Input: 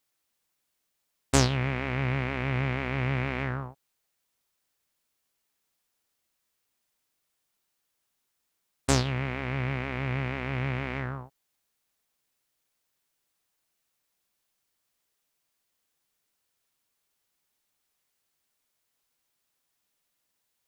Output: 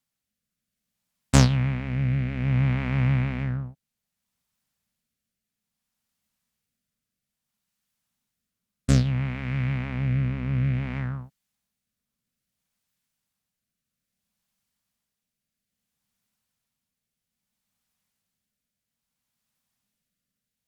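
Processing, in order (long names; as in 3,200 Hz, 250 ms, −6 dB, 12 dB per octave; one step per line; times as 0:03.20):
low shelf with overshoot 270 Hz +7 dB, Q 3
harmonic generator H 3 −19 dB, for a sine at −5 dBFS
rotating-speaker cabinet horn 0.6 Hz
level +2.5 dB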